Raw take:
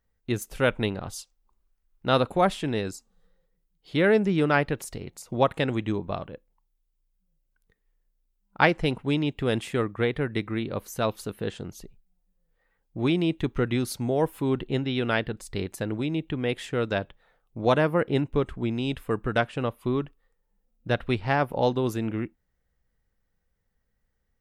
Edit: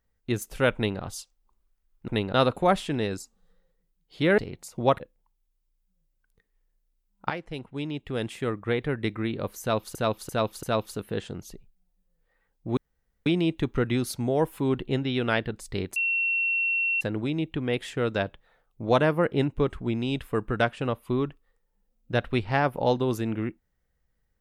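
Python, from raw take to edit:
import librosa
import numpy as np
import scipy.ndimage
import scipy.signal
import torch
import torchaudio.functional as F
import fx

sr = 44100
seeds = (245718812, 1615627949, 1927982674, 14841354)

y = fx.edit(x, sr, fx.duplicate(start_s=0.75, length_s=0.26, to_s=2.08),
    fx.cut(start_s=4.12, length_s=0.8),
    fx.cut(start_s=5.54, length_s=0.78),
    fx.fade_in_from(start_s=8.62, length_s=1.77, floor_db=-15.0),
    fx.repeat(start_s=10.93, length_s=0.34, count=4),
    fx.insert_room_tone(at_s=13.07, length_s=0.49),
    fx.insert_tone(at_s=15.77, length_s=1.05, hz=2720.0, db=-22.5), tone=tone)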